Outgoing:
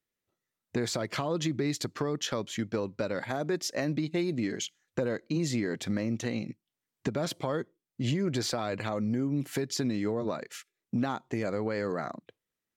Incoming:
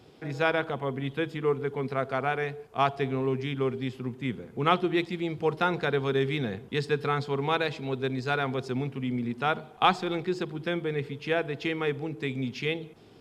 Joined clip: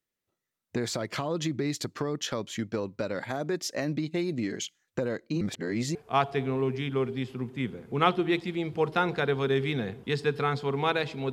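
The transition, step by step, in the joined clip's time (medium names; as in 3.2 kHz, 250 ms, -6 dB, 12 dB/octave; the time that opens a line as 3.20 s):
outgoing
5.41–5.95 s: reverse
5.95 s: go over to incoming from 2.60 s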